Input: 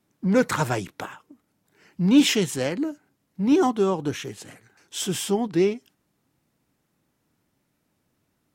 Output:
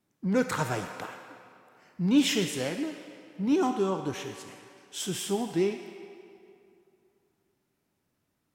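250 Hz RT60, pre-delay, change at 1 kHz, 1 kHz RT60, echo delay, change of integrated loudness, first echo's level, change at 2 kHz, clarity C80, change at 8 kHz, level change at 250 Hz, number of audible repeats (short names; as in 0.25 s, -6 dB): 2.6 s, 14 ms, -5.0 dB, 2.6 s, none, -6.0 dB, none, -5.0 dB, 7.0 dB, -5.0 dB, -6.0 dB, none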